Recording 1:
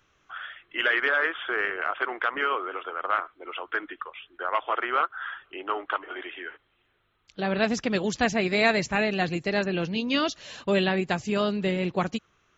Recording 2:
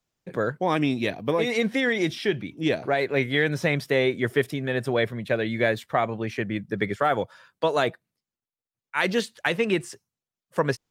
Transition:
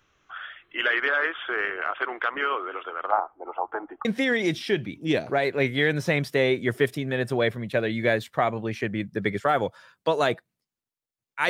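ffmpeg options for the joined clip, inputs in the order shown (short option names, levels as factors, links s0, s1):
-filter_complex "[0:a]asplit=3[s0][s1][s2];[s0]afade=t=out:st=3.1:d=0.02[s3];[s1]lowpass=f=820:t=q:w=8,afade=t=in:st=3.1:d=0.02,afade=t=out:st=4.05:d=0.02[s4];[s2]afade=t=in:st=4.05:d=0.02[s5];[s3][s4][s5]amix=inputs=3:normalize=0,apad=whole_dur=11.49,atrim=end=11.49,atrim=end=4.052[s6];[1:a]atrim=start=1.608:end=9.05[s7];[s6][s7]acrossfade=d=0.004:c1=hsin:c2=hsin"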